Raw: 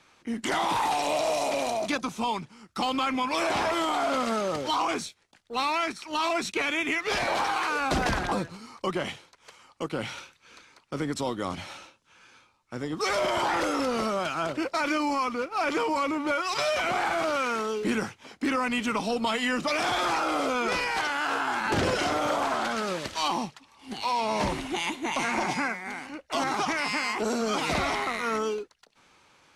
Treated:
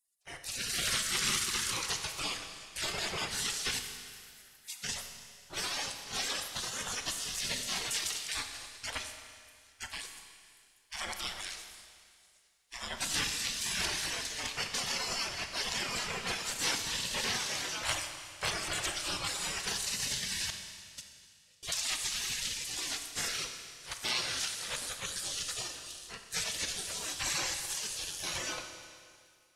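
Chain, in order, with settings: 3.79–4.84 inverse Chebyshev high-pass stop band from 1200 Hz, stop band 50 dB; spectral gate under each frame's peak -25 dB weak; reverb removal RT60 0.54 s; 20.5–21.63 gate -41 dBFS, range -34 dB; AGC gain up to 8.5 dB; Schroeder reverb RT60 2.1 s, combs from 28 ms, DRR 5.5 dB

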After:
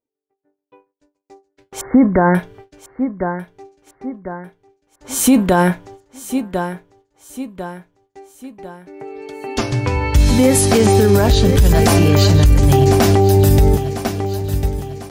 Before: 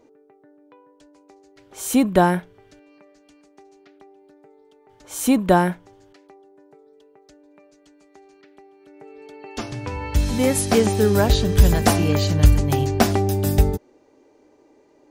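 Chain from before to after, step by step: gate -48 dBFS, range -43 dB; bell 62 Hz +4 dB 2 oct; resonator 130 Hz, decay 0.15 s, harmonics all, mix 60%; 1.81–2.35 brick-wall FIR low-pass 2200 Hz; feedback echo 1.048 s, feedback 43%, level -14.5 dB; maximiser +16.5 dB; gain -2.5 dB

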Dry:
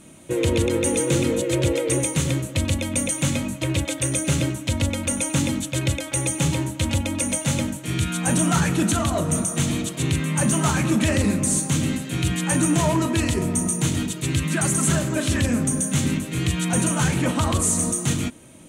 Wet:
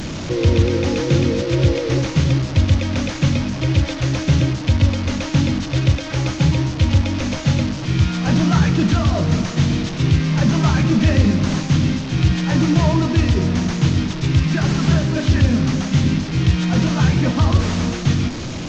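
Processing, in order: delta modulation 32 kbps, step -24 dBFS; low shelf 170 Hz +12 dB

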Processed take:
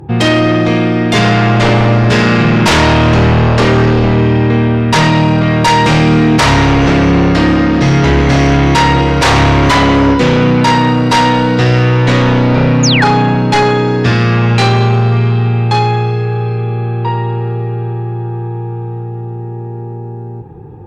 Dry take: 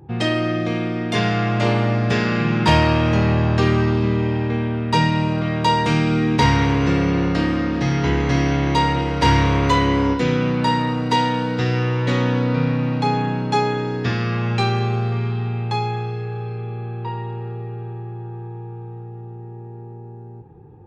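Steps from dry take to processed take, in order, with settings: sine folder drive 10 dB, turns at -4 dBFS; painted sound fall, 12.83–13.05, 1300–7100 Hz -12 dBFS; gain -1 dB

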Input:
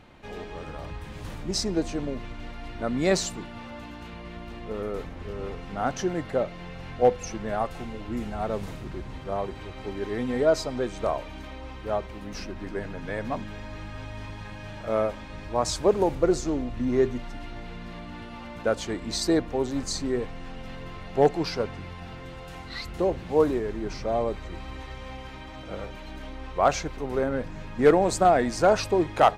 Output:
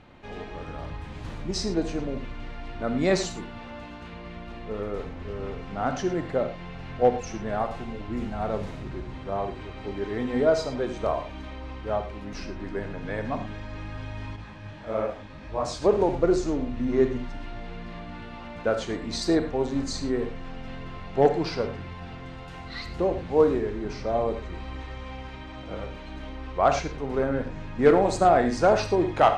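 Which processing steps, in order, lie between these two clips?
air absorption 66 m; reverb, pre-delay 23 ms, DRR 7.5 dB; 14.36–15.82 detuned doubles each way 58 cents

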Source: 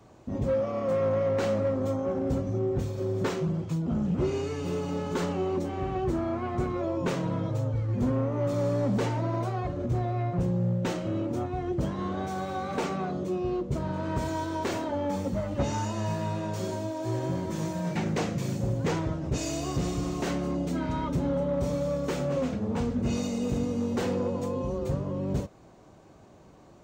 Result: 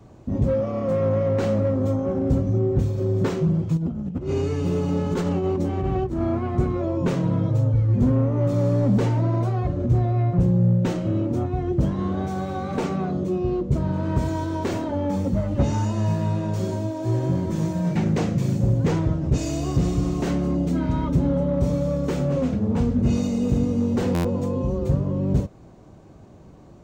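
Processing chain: low shelf 350 Hz +10.5 dB; 3.77–6.39 negative-ratio compressor -23 dBFS, ratio -0.5; stuck buffer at 24.14, samples 512, times 8

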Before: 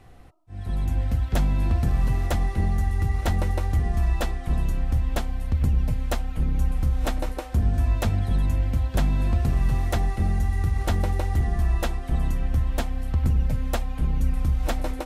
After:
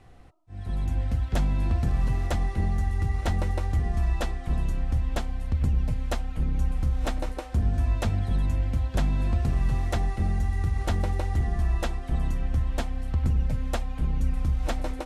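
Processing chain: LPF 9900 Hz 12 dB/oct; gain -2.5 dB

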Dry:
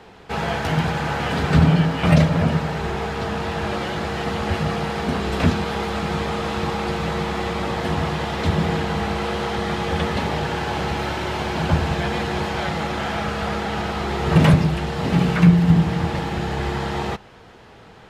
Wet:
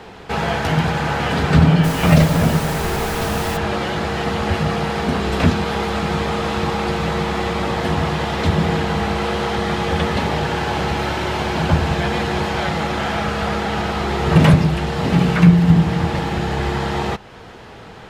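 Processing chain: in parallel at -2 dB: compressor, threshold -35 dBFS, peak gain reduction 24.5 dB; 1.83–3.56 on the sum: added noise pink -30 dBFS; gain +2 dB

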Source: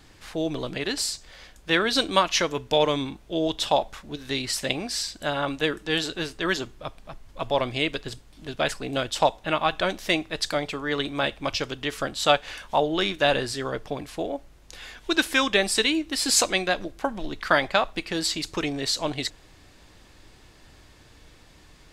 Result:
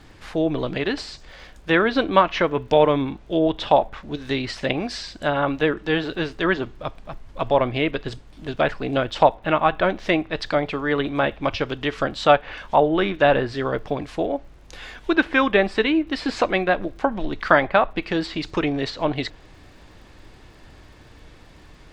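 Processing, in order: treble ducked by the level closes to 2400 Hz, closed at -22 dBFS; high shelf 4200 Hz -11.5 dB; crackle 78/s -56 dBFS; gain +6 dB

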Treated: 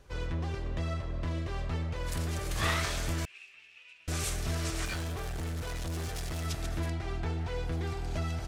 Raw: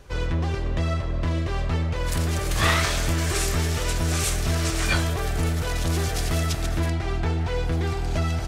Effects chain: 3.25–4.08 band-pass 2600 Hz, Q 13; 4.85–6.45 hard clip -23.5 dBFS, distortion -16 dB; gain -9 dB

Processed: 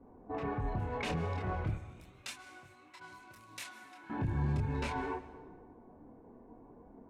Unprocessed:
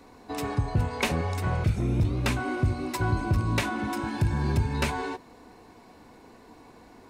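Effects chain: Wiener smoothing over 9 samples; low-pass opened by the level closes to 630 Hz, open at -20 dBFS; 1.75–4.1 differentiator; limiter -24 dBFS, peak gain reduction 9 dB; chorus voices 4, 0.34 Hz, delay 26 ms, depth 4.3 ms; plate-style reverb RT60 1.4 s, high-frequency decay 0.7×, pre-delay 0.12 s, DRR 14.5 dB

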